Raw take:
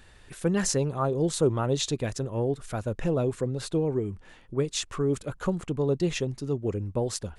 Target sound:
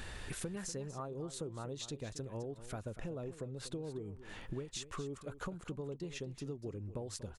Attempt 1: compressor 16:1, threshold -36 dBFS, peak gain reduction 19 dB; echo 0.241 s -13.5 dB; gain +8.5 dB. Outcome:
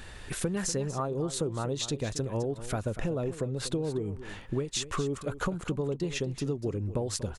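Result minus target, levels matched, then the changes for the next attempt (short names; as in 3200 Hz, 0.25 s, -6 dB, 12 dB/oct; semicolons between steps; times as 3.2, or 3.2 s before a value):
compressor: peak gain reduction -11 dB
change: compressor 16:1, threshold -48 dBFS, peak gain reduction 30.5 dB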